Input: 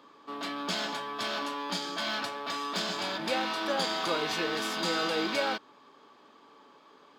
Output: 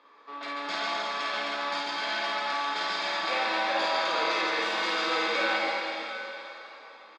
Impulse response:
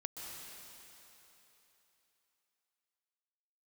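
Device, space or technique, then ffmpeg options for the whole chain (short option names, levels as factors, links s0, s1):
station announcement: -filter_complex "[0:a]highpass=460,lowpass=4600,equalizer=f=2100:t=o:w=0.56:g=5.5,aecho=1:1:52.48|139.9:0.794|0.631[s0];[1:a]atrim=start_sample=2205[s1];[s0][s1]afir=irnorm=-1:irlink=0,bandreject=f=3000:w=9.7,volume=1.19"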